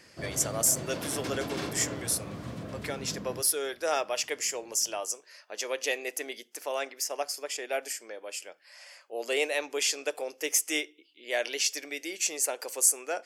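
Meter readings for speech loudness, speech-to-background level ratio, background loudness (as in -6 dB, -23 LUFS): -30.0 LUFS, 8.5 dB, -38.5 LUFS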